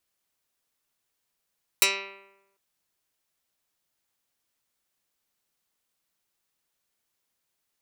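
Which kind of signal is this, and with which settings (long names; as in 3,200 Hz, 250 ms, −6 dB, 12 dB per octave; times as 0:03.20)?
Karplus-Strong string G3, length 0.75 s, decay 0.97 s, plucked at 0.12, dark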